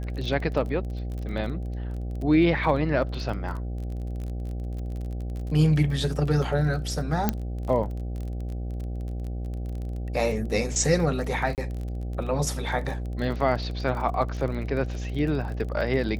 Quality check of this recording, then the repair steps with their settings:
buzz 60 Hz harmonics 13 -31 dBFS
crackle 25/s -33 dBFS
7.29 pop -8 dBFS
11.55–11.58 gap 28 ms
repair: de-click; de-hum 60 Hz, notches 13; interpolate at 11.55, 28 ms

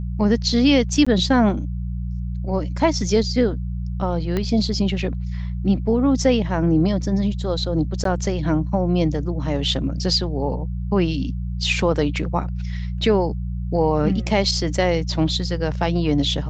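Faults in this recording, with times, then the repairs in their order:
hum 60 Hz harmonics 3 -26 dBFS
1.05–1.06 gap 15 ms
4.37 pop -11 dBFS
8.04–8.05 gap 13 ms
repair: de-click; de-hum 60 Hz, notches 3; interpolate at 1.05, 15 ms; interpolate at 8.04, 13 ms

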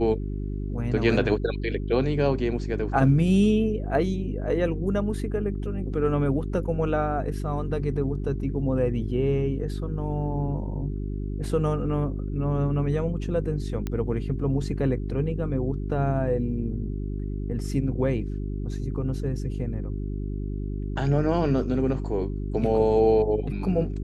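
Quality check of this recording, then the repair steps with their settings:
hum 50 Hz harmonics 8 -30 dBFS
13.87 pop -17 dBFS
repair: de-click; de-hum 50 Hz, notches 8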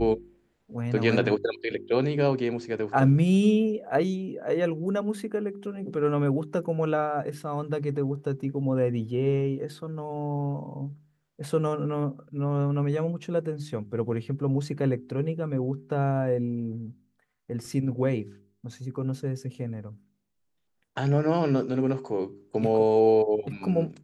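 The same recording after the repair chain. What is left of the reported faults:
none

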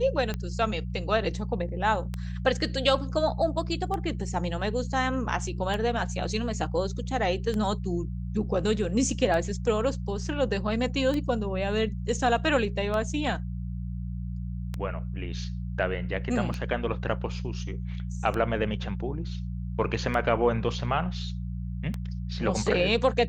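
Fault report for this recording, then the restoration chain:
hum 60 Hz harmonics 3 -33 dBFS
tick 33 1/3 rpm -18 dBFS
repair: de-click; de-hum 60 Hz, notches 3

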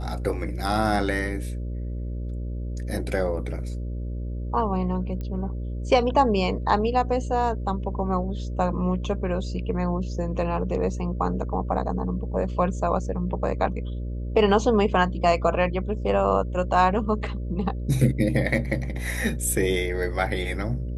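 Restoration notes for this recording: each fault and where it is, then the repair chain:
buzz 60 Hz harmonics 10 -30 dBFS
5.21 pop -22 dBFS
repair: de-click; de-hum 60 Hz, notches 10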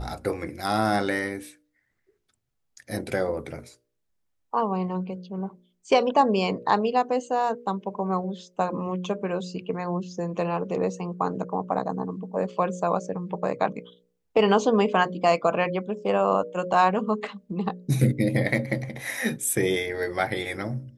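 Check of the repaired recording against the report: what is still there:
5.21 pop

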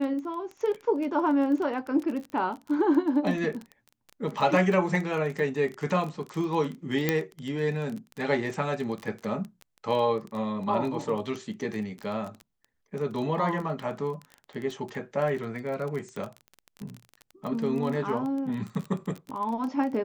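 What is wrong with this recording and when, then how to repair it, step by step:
crackle 22/s -32 dBFS
7.09 pop -9 dBFS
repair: de-click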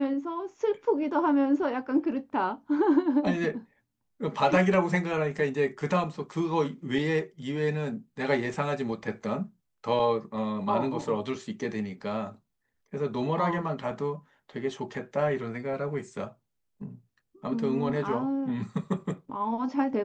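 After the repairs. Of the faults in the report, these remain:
none

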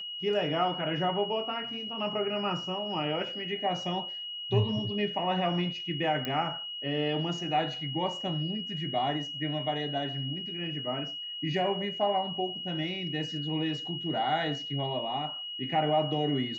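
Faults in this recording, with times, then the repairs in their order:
tone 2900 Hz -36 dBFS
6.25 pop -18 dBFS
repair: de-click; notch 2900 Hz, Q 30

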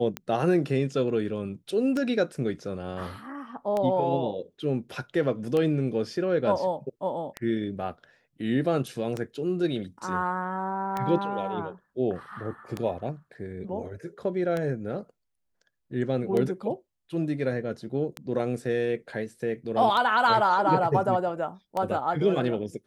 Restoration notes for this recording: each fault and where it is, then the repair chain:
tick 33 1/3 rpm -16 dBFS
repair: de-click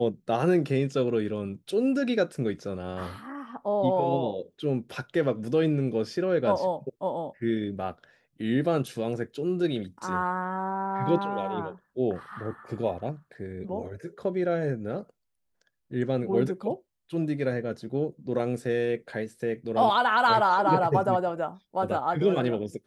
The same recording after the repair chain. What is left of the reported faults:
none

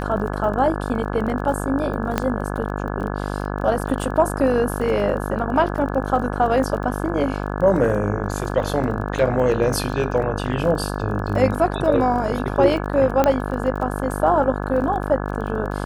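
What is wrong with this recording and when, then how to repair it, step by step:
buzz 50 Hz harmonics 34 -26 dBFS
crackle 21/s -29 dBFS
2.18 pop -6 dBFS
13.24 pop -5 dBFS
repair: de-click; de-hum 50 Hz, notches 34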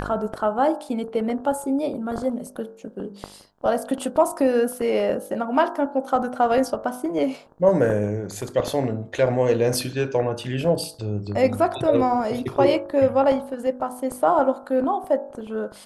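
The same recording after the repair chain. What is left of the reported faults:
none

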